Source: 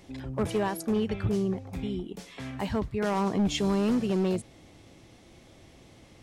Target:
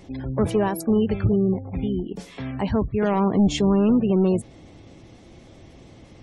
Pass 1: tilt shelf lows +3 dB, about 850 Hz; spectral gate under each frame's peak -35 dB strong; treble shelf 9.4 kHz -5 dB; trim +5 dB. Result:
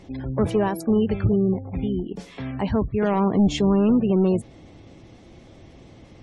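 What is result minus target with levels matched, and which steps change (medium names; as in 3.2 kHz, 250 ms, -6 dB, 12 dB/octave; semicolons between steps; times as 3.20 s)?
8 kHz band -3.5 dB
change: treble shelf 9.4 kHz +5 dB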